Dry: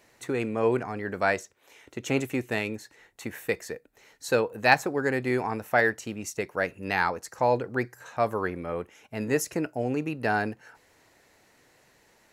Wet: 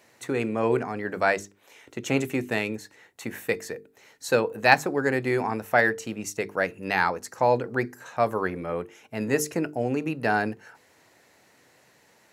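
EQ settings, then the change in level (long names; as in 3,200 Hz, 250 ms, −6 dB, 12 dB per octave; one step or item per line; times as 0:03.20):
high-pass filter 110 Hz
low-shelf EQ 170 Hz +3 dB
mains-hum notches 50/100/150/200/250/300/350/400/450 Hz
+2.0 dB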